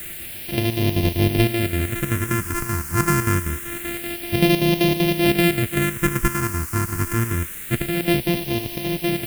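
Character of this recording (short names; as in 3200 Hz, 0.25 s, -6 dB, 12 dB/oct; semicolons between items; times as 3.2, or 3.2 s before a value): a buzz of ramps at a fixed pitch in blocks of 128 samples; chopped level 5.2 Hz, depth 65%, duty 65%; a quantiser's noise floor 6-bit, dither triangular; phasing stages 4, 0.26 Hz, lowest notch 600–1300 Hz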